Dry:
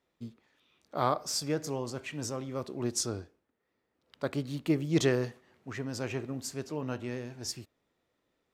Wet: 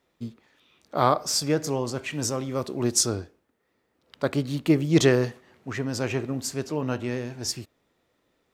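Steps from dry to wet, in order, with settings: 2.10–3.15 s: treble shelf 5.6 kHz +4.5 dB; trim +7.5 dB

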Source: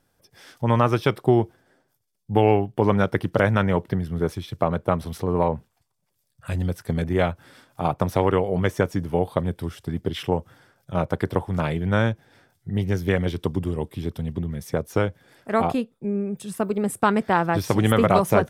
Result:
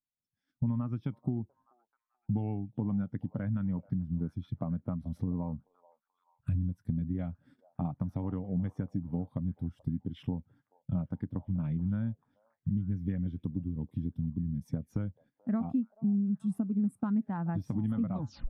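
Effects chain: tape stop on the ending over 0.34 s; resonant low shelf 320 Hz +6 dB, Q 3; gate -43 dBFS, range -18 dB; compression 8:1, threshold -30 dBFS, peak gain reduction 21 dB; on a send: repeats whose band climbs or falls 433 ms, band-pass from 700 Hz, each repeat 0.7 oct, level -11 dB; on the sum: spectral contrast expander 1.5:1; trim -4 dB

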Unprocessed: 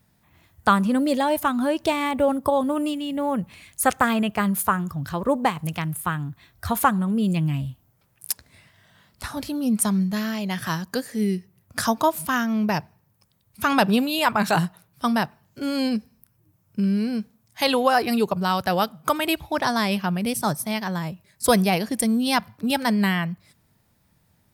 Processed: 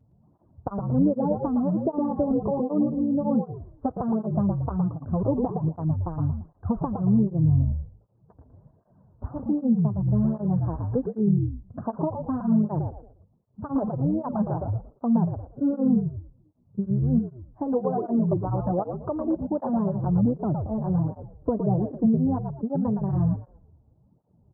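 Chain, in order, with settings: compression, threshold -22 dBFS, peak gain reduction 10 dB; Gaussian low-pass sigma 12 samples; frequency-shifting echo 114 ms, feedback 34%, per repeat -62 Hz, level -4.5 dB; cancelling through-zero flanger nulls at 1.3 Hz, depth 6.1 ms; trim +6.5 dB

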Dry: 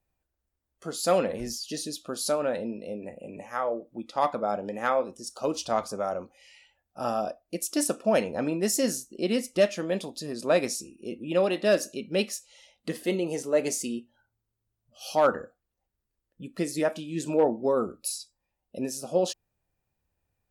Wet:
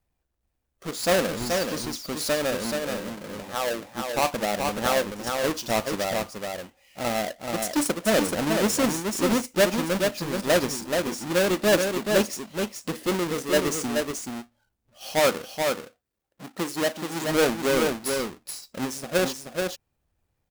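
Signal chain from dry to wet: square wave that keeps the level; 15.18–17.22 s: high-pass 130 Hz -> 290 Hz 6 dB/octave; delay 429 ms -4.5 dB; trim -2 dB

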